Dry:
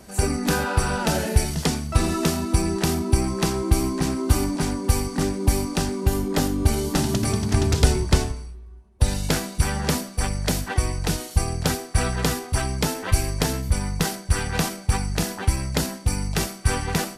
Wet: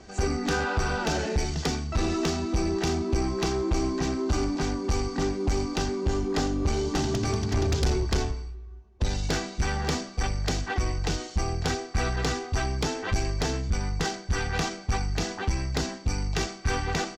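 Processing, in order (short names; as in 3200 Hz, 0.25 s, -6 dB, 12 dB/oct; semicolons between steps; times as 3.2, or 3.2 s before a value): steep low-pass 7100 Hz 48 dB/oct; comb 2.6 ms, depth 38%; soft clip -17 dBFS, distortion -9 dB; gain -2 dB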